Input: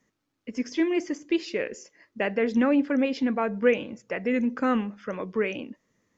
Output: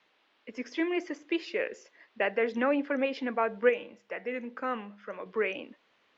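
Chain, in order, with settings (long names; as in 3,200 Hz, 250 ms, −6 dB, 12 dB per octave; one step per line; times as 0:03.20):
three-way crossover with the lows and the highs turned down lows −14 dB, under 380 Hz, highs −14 dB, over 4,000 Hz
noise in a band 250–3,500 Hz −70 dBFS
0:03.69–0:05.26: tuned comb filter 68 Hz, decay 0.41 s, harmonics odd, mix 50%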